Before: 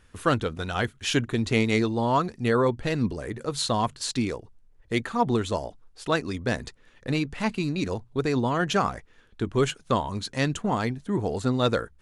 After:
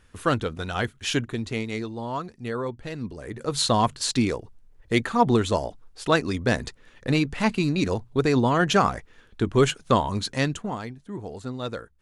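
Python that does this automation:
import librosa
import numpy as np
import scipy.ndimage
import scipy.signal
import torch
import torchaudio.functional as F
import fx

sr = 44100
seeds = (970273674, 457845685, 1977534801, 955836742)

y = fx.gain(x, sr, db=fx.line((1.09, 0.0), (1.66, -7.5), (3.07, -7.5), (3.57, 4.0), (10.29, 4.0), (10.87, -8.5)))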